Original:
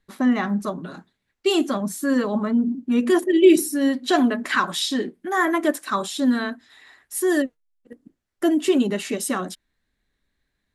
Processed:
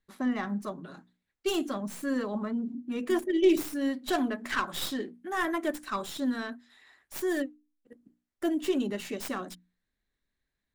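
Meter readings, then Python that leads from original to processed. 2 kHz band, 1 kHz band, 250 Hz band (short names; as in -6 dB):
-9.0 dB, -9.0 dB, -10.0 dB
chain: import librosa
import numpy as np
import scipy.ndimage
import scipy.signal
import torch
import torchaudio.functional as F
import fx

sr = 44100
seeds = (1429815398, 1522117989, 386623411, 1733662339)

y = fx.tracing_dist(x, sr, depth_ms=0.13)
y = fx.hum_notches(y, sr, base_hz=60, count=5)
y = y * 10.0 ** (-9.0 / 20.0)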